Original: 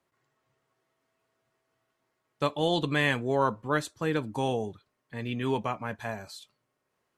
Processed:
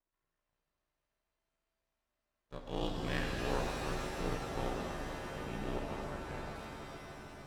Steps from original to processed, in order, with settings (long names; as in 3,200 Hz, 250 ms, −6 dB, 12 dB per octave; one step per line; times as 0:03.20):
harmonic and percussive parts rebalanced percussive −15 dB
half-wave rectification
ring modulation 31 Hz
on a send: echo that builds up and dies away 143 ms, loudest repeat 5, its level −18 dB
on the sum: wrong playback speed 25 fps video run at 24 fps
reverb with rising layers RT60 3 s, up +7 semitones, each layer −2 dB, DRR 2.5 dB
level −5 dB